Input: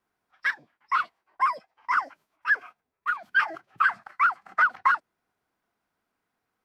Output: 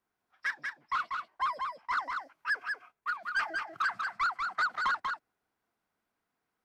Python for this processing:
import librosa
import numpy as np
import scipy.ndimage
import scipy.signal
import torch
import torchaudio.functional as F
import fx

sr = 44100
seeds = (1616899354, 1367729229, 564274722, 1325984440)

y = 10.0 ** (-19.0 / 20.0) * np.tanh(x / 10.0 ** (-19.0 / 20.0))
y = y + 10.0 ** (-4.5 / 20.0) * np.pad(y, (int(191 * sr / 1000.0), 0))[:len(y)]
y = y * 10.0 ** (-5.0 / 20.0)